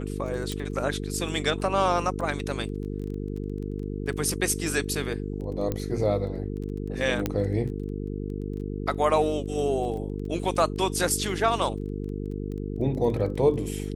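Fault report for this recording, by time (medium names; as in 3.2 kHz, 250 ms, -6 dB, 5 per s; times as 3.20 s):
buzz 50 Hz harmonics 9 -32 dBFS
crackle 13 per s -35 dBFS
0.52 s: pop -17 dBFS
5.72 s: pop -15 dBFS
7.26 s: pop -11 dBFS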